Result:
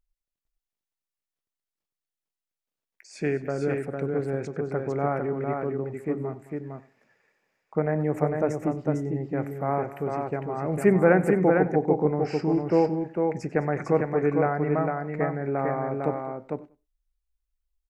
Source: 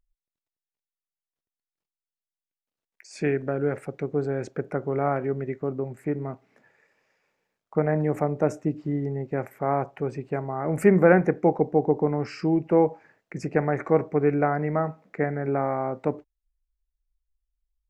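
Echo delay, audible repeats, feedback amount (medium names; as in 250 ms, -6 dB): 95 ms, 4, no regular repeats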